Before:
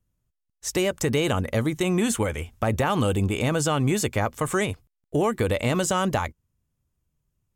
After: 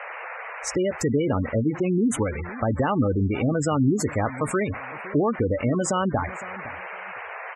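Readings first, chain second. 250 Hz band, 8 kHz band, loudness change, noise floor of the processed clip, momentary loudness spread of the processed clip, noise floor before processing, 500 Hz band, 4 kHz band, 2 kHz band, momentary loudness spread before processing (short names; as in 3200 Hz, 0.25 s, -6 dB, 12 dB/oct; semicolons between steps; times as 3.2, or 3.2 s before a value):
+2.5 dB, -3.0 dB, -0.5 dB, -37 dBFS, 12 LU, -80 dBFS, 0.0 dB, -9.0 dB, -1.5 dB, 6 LU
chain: band noise 470–2300 Hz -36 dBFS; dynamic EQ 270 Hz, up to +7 dB, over -43 dBFS, Q 4.7; on a send: feedback echo 0.511 s, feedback 24%, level -17 dB; on the sum: spectral gate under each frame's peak -15 dB strong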